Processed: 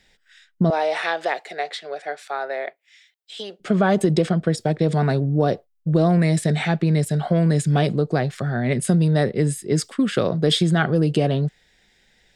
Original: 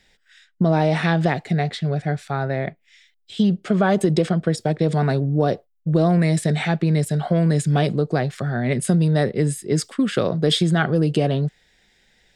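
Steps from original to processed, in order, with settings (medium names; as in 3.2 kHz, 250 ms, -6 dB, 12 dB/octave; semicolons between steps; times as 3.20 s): 0.70–3.60 s: high-pass 450 Hz 24 dB/octave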